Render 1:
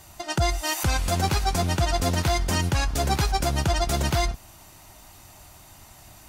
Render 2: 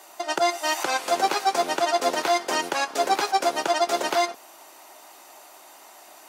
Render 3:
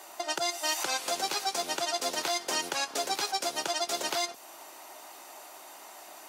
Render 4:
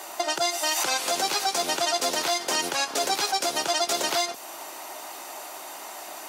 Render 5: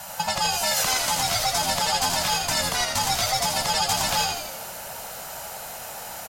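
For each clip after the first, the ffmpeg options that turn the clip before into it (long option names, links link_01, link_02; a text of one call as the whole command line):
ffmpeg -i in.wav -filter_complex "[0:a]highpass=frequency=330:width=0.5412,highpass=frequency=330:width=1.3066,acrossover=split=7600[link_01][link_02];[link_02]acompressor=threshold=-40dB:ratio=4:attack=1:release=60[link_03];[link_01][link_03]amix=inputs=2:normalize=0,equalizer=frequency=720:width_type=o:width=2.8:gain=5.5" out.wav
ffmpeg -i in.wav -filter_complex "[0:a]acrossover=split=130|3000[link_01][link_02][link_03];[link_02]acompressor=threshold=-33dB:ratio=4[link_04];[link_01][link_04][link_03]amix=inputs=3:normalize=0" out.wav
ffmpeg -i in.wav -af "alimiter=limit=-24dB:level=0:latency=1:release=43,volume=9dB" out.wav
ffmpeg -i in.wav -filter_complex "[0:a]afftfilt=real='real(if(between(b,1,1008),(2*floor((b-1)/24)+1)*24-b,b),0)':imag='imag(if(between(b,1,1008),(2*floor((b-1)/24)+1)*24-b,b),0)*if(between(b,1,1008),-1,1)':win_size=2048:overlap=0.75,highshelf=frequency=11000:gain=7,asplit=8[link_01][link_02][link_03][link_04][link_05][link_06][link_07][link_08];[link_02]adelay=82,afreqshift=-81,volume=-5dB[link_09];[link_03]adelay=164,afreqshift=-162,volume=-10.4dB[link_10];[link_04]adelay=246,afreqshift=-243,volume=-15.7dB[link_11];[link_05]adelay=328,afreqshift=-324,volume=-21.1dB[link_12];[link_06]adelay=410,afreqshift=-405,volume=-26.4dB[link_13];[link_07]adelay=492,afreqshift=-486,volume=-31.8dB[link_14];[link_08]adelay=574,afreqshift=-567,volume=-37.1dB[link_15];[link_01][link_09][link_10][link_11][link_12][link_13][link_14][link_15]amix=inputs=8:normalize=0" out.wav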